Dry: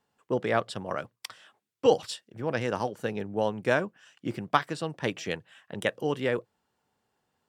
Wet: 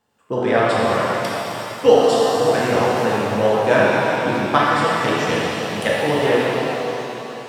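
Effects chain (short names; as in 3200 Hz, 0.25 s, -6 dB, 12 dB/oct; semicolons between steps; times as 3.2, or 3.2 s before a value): shimmer reverb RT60 3.3 s, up +7 st, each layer -8 dB, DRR -7 dB; gain +4 dB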